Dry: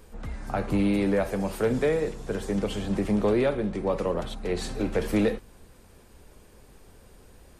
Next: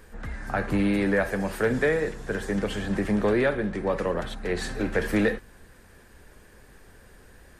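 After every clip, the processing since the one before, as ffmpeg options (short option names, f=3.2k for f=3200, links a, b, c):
-af "equalizer=f=1.7k:t=o:w=0.49:g=11.5"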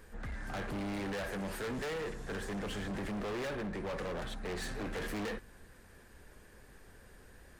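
-af "volume=31dB,asoftclip=hard,volume=-31dB,volume=-5dB"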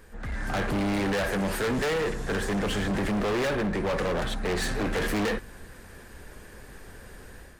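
-af "dynaudnorm=f=200:g=3:m=7.5dB,volume=3.5dB"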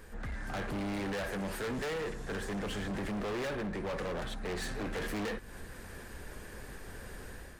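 -af "alimiter=level_in=10dB:limit=-24dB:level=0:latency=1:release=211,volume=-10dB"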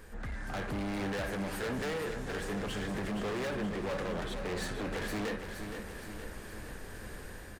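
-af "aecho=1:1:469|938|1407|1876|2345|2814|3283:0.398|0.235|0.139|0.0818|0.0482|0.0285|0.0168"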